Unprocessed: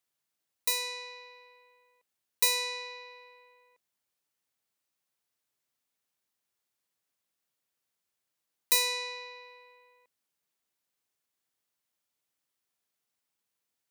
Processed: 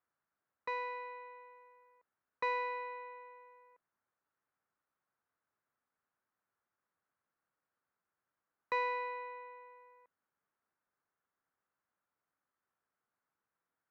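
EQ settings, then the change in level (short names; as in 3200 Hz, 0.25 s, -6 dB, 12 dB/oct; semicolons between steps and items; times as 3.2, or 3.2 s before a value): ladder low-pass 1700 Hz, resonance 45%; +9.0 dB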